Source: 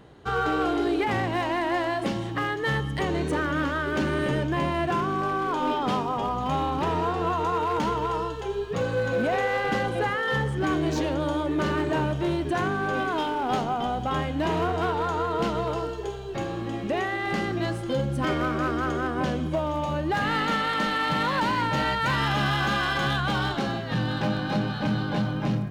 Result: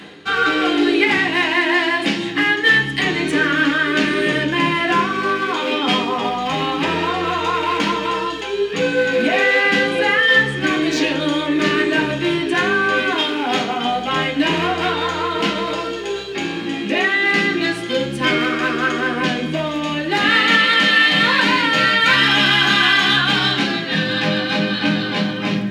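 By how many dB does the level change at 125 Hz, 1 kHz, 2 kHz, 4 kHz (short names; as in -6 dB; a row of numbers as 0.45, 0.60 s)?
0.0, +5.5, +14.5, +16.0 dB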